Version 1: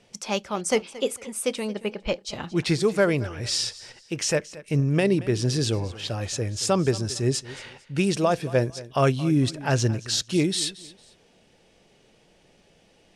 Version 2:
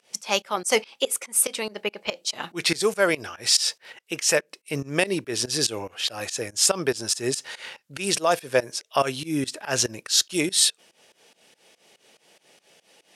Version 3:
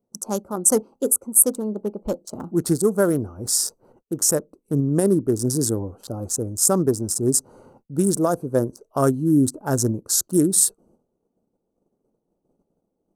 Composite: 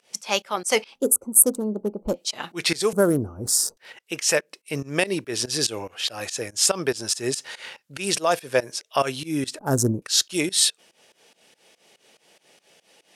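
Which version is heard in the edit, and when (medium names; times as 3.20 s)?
2
0.96–2.17 s: from 3, crossfade 0.10 s
2.93–3.77 s: from 3
9.59–10.02 s: from 3
not used: 1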